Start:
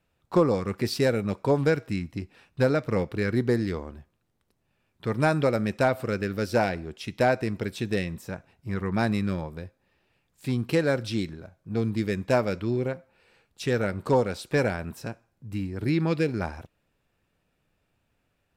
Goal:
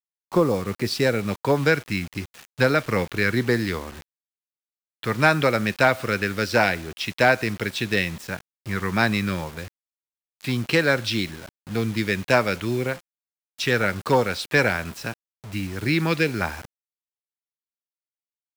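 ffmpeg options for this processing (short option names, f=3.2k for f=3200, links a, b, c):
-filter_complex "[0:a]acrossover=split=200|1200|5600[a][b][c][d];[c]dynaudnorm=f=220:g=11:m=10.5dB[e];[a][b][e][d]amix=inputs=4:normalize=0,acrusher=bits=6:mix=0:aa=0.000001,volume=1.5dB"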